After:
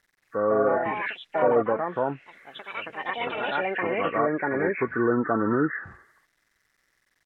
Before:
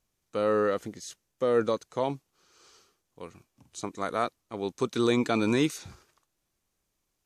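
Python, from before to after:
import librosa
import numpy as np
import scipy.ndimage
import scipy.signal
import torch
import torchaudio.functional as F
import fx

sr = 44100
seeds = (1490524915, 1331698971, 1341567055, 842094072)

y = fx.freq_compress(x, sr, knee_hz=1100.0, ratio=4.0)
y = fx.low_shelf(y, sr, hz=320.0, db=-4.5)
y = fx.quant_dither(y, sr, seeds[0], bits=12, dither='none')
y = fx.echo_pitch(y, sr, ms=225, semitones=4, count=3, db_per_echo=-3.0)
y = fx.env_lowpass_down(y, sr, base_hz=1200.0, full_db=-22.0)
y = F.gain(torch.from_numpy(y), 3.5).numpy()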